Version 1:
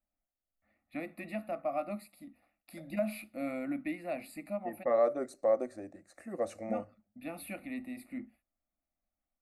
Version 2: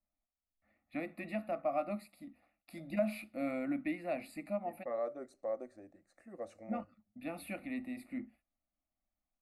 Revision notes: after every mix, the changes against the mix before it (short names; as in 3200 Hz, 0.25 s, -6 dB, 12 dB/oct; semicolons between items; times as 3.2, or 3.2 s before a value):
second voice -10.0 dB; master: add high shelf 9700 Hz -10 dB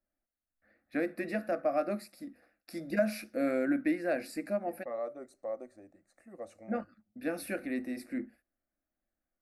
first voice: remove fixed phaser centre 1600 Hz, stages 6; master: add high shelf 9700 Hz +10 dB